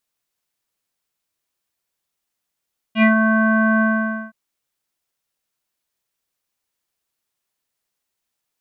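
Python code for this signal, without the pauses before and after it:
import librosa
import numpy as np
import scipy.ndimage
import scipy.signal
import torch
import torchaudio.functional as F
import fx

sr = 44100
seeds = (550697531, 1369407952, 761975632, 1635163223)

y = fx.sub_voice(sr, note=57, wave='square', cutoff_hz=1500.0, q=4.9, env_oct=1.0, env_s=0.19, attack_ms=76.0, decay_s=0.12, sustain_db=-5.0, release_s=0.51, note_s=0.86, slope=24)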